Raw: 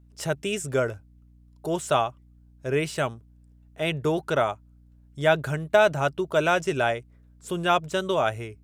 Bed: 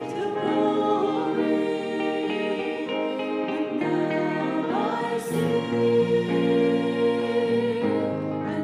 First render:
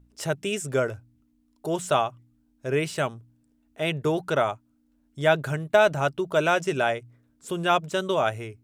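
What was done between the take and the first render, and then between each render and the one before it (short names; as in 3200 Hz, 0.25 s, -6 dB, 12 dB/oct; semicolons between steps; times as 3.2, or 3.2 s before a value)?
de-hum 60 Hz, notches 3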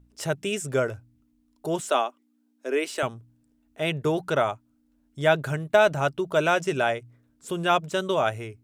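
1.8–3.03 Chebyshev high-pass 240 Hz, order 5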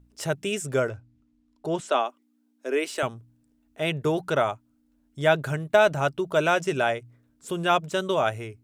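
0.89–2.05 air absorption 67 m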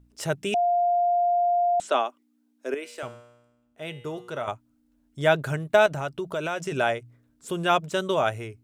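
0.54–1.8 bleep 702 Hz -19 dBFS; 2.74–4.48 resonator 120 Hz, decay 0.98 s, mix 70%; 5.86–6.72 compressor 3:1, threshold -27 dBFS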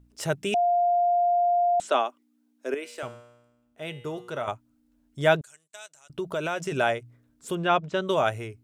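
5.41–6.1 band-pass 7700 Hz, Q 2.8; 7.55–8.08 air absorption 160 m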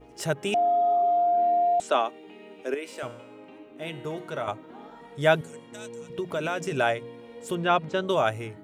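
add bed -20.5 dB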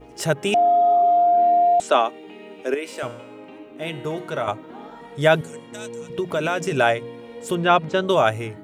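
gain +6 dB; limiter -3 dBFS, peak gain reduction 3 dB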